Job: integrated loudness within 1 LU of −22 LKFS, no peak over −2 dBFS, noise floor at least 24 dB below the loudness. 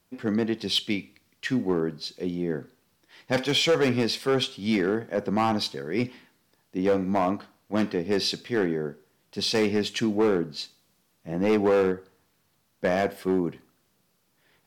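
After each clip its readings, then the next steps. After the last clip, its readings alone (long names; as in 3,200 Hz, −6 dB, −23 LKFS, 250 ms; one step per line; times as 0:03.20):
share of clipped samples 1.5%; peaks flattened at −16.5 dBFS; integrated loudness −26.5 LKFS; sample peak −16.5 dBFS; target loudness −22.0 LKFS
→ clipped peaks rebuilt −16.5 dBFS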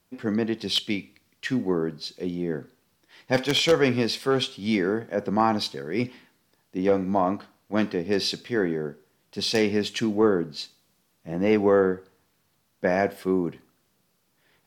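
share of clipped samples 0.0%; integrated loudness −25.5 LKFS; sample peak −7.5 dBFS; target loudness −22.0 LKFS
→ level +3.5 dB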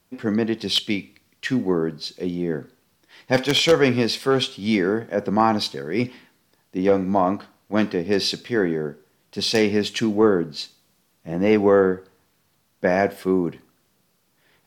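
integrated loudness −22.0 LKFS; sample peak −4.0 dBFS; background noise floor −66 dBFS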